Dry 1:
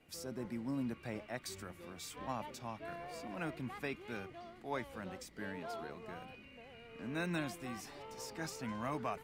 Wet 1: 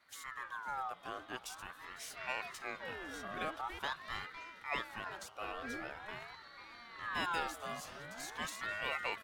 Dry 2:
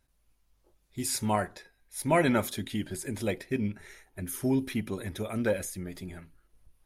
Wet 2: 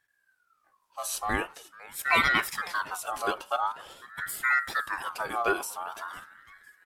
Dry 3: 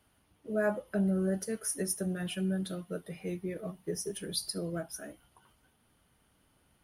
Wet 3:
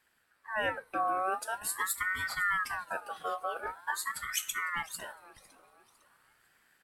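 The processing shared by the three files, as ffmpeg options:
-af "aecho=1:1:504|1008|1512:0.0891|0.0357|0.0143,dynaudnorm=f=360:g=9:m=4dB,aeval=exprs='val(0)*sin(2*PI*1300*n/s+1300*0.3/0.45*sin(2*PI*0.45*n/s))':c=same"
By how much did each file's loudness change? +1.5, +2.0, +1.0 LU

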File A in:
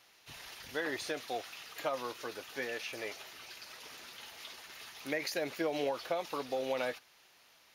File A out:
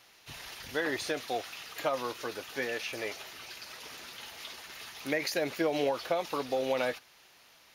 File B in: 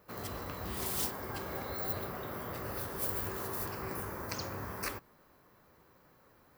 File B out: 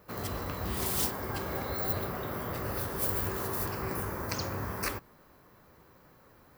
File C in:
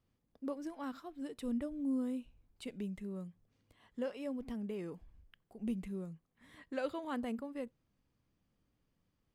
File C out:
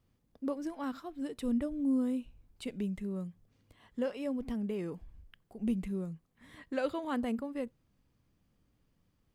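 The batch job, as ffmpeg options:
-af "lowshelf=f=190:g=3.5,volume=4dB"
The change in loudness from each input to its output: +4.5, +4.5, +5.0 LU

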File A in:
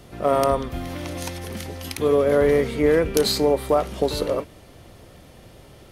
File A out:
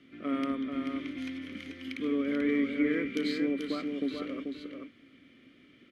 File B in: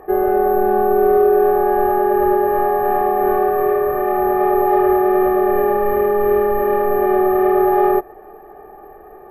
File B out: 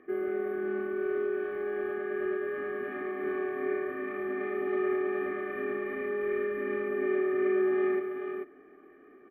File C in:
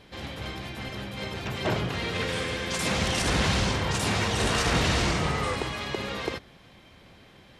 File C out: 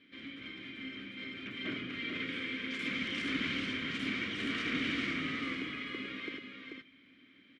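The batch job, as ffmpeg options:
-filter_complex "[0:a]asplit=3[a][b][c];[a]bandpass=f=270:t=q:w=8,volume=0dB[d];[b]bandpass=f=2.29k:t=q:w=8,volume=-6dB[e];[c]bandpass=f=3.01k:t=q:w=8,volume=-9dB[f];[d][e][f]amix=inputs=3:normalize=0,equalizer=f=1.2k:t=o:w=1.2:g=14.5,asplit=2[g][h];[h]aecho=0:1:437:0.531[i];[g][i]amix=inputs=2:normalize=0"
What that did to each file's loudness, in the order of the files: -11.0, -16.0, -9.0 LU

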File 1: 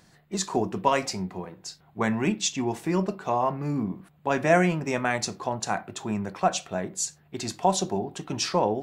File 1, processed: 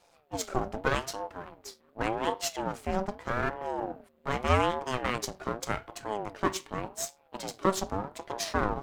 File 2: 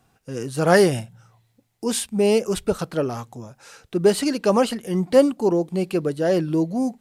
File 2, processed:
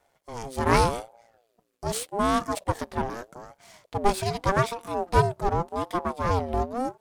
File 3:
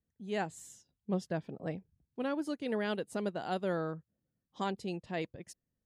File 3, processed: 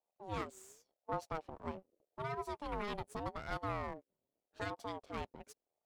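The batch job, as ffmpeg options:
-af "aeval=exprs='if(lt(val(0),0),0.251*val(0),val(0))':c=same,aeval=exprs='val(0)*sin(2*PI*540*n/s+540*0.3/0.84*sin(2*PI*0.84*n/s))':c=same"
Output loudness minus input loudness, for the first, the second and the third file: -5.0, -5.5, -6.0 LU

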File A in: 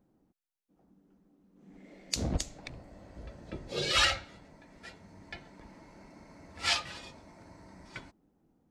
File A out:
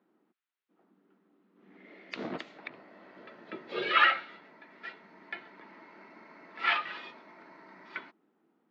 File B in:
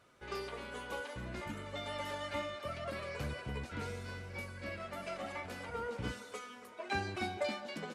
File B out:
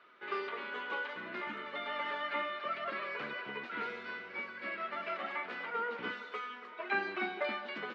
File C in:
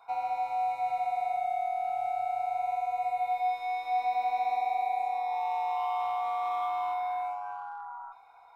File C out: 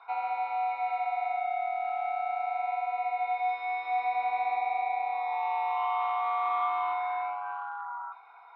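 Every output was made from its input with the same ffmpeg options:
-filter_complex "[0:a]highpass=f=260:w=0.5412,highpass=f=260:w=1.3066,equalizer=f=280:t=q:w=4:g=-7,equalizer=f=530:t=q:w=4:g=-8,equalizer=f=760:t=q:w=4:g=-5,equalizer=f=1.3k:t=q:w=4:g=4,equalizer=f=1.9k:t=q:w=4:g=3,lowpass=f=3.6k:w=0.5412,lowpass=f=3.6k:w=1.3066,acrossover=split=2800[a][b];[b]acompressor=threshold=-55dB:ratio=4:attack=1:release=60[c];[a][c]amix=inputs=2:normalize=0,volume=5dB"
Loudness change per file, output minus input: 0.0, +3.0, +0.5 LU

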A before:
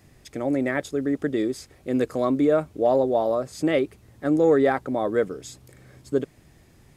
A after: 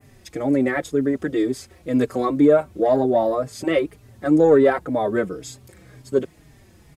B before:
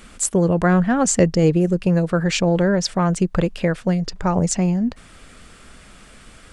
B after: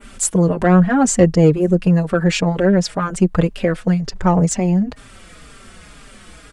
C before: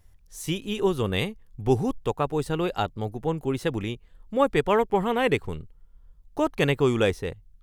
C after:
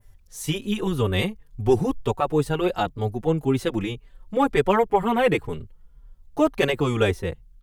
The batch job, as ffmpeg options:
-filter_complex "[0:a]adynamicequalizer=threshold=0.00631:dfrequency=5100:dqfactor=0.82:tfrequency=5100:tqfactor=0.82:attack=5:release=100:ratio=0.375:range=2.5:mode=cutabove:tftype=bell,acontrast=36,asplit=2[a][b];[b]adelay=4.5,afreqshift=-2[c];[a][c]amix=inputs=2:normalize=1,volume=1dB"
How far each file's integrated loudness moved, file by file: +3.5, +3.0, +2.5 LU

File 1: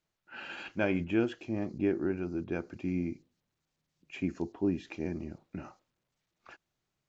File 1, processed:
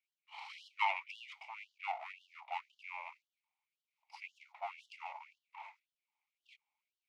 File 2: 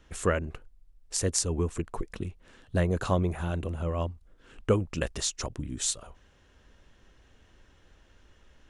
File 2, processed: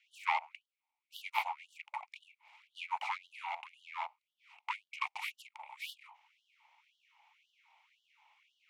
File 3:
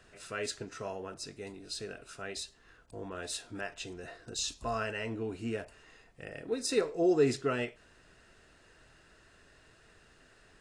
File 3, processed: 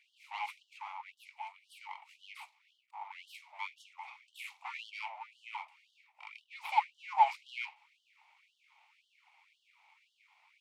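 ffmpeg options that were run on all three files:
-filter_complex "[0:a]aeval=exprs='abs(val(0))':c=same,asplit=3[a][b][c];[a]bandpass=f=300:t=q:w=8,volume=0dB[d];[b]bandpass=f=870:t=q:w=8,volume=-6dB[e];[c]bandpass=f=2.24k:t=q:w=8,volume=-9dB[f];[d][e][f]amix=inputs=3:normalize=0,afftfilt=real='re*gte(b*sr/1024,530*pow(2900/530,0.5+0.5*sin(2*PI*1.9*pts/sr)))':imag='im*gte(b*sr/1024,530*pow(2900/530,0.5+0.5*sin(2*PI*1.9*pts/sr)))':win_size=1024:overlap=0.75,volume=17dB"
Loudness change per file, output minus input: -9.5, -9.5, -3.5 LU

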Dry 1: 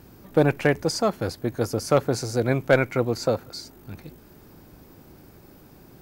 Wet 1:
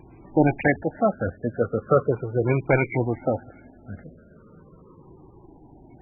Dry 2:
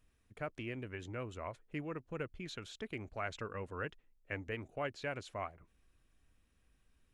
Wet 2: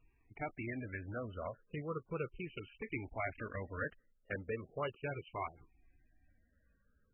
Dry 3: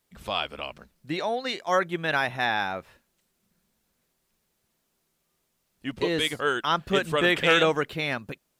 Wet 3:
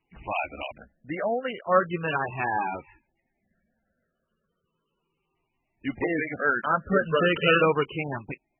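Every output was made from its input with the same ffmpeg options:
-af "afftfilt=real='re*pow(10,9/40*sin(2*PI*(0.7*log(max(b,1)*sr/1024/100)/log(2)-(-0.37)*(pts-256)/sr)))':imag='im*pow(10,9/40*sin(2*PI*(0.7*log(max(b,1)*sr/1024/100)/log(2)-(-0.37)*(pts-256)/sr)))':win_size=1024:overlap=0.75" -ar 22050 -c:a libmp3lame -b:a 8k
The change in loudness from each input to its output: 0.0, +0.5, -0.5 LU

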